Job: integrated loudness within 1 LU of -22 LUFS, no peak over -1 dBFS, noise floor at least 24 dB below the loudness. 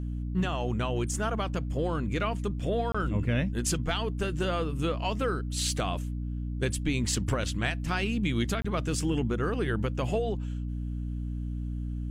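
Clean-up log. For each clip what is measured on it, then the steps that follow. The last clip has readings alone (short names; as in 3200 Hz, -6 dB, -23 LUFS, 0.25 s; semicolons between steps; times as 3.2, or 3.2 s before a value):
dropouts 2; longest dropout 25 ms; hum 60 Hz; harmonics up to 300 Hz; hum level -30 dBFS; loudness -30.5 LUFS; peak -15.0 dBFS; loudness target -22.0 LUFS
-> interpolate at 2.92/8.62, 25 ms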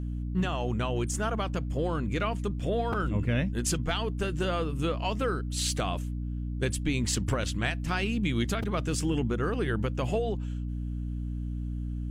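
dropouts 0; hum 60 Hz; harmonics up to 300 Hz; hum level -30 dBFS
-> notches 60/120/180/240/300 Hz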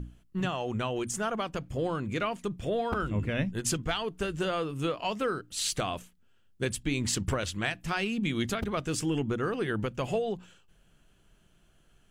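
hum none; loudness -31.5 LUFS; peak -15.0 dBFS; loudness target -22.0 LUFS
-> gain +9.5 dB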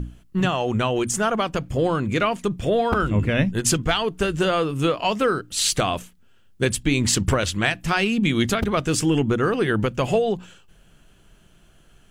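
loudness -22.0 LUFS; peak -5.5 dBFS; noise floor -54 dBFS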